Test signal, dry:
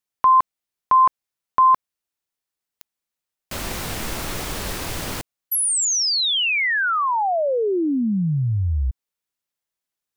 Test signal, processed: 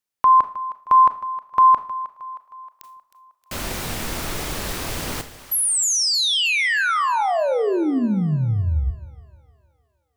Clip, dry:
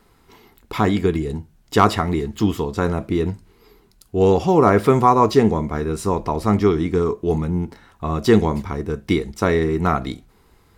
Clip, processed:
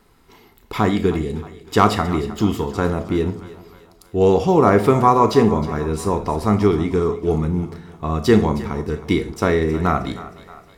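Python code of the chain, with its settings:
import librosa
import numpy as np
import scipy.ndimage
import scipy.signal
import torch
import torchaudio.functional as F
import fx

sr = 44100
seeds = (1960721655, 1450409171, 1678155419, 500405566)

y = fx.echo_split(x, sr, split_hz=520.0, low_ms=154, high_ms=313, feedback_pct=52, wet_db=-15.5)
y = fx.rev_schroeder(y, sr, rt60_s=0.36, comb_ms=26, drr_db=10.5)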